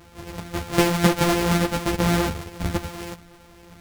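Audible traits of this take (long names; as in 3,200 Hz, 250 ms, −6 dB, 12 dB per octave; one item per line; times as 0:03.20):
a buzz of ramps at a fixed pitch in blocks of 256 samples
a shimmering, thickened sound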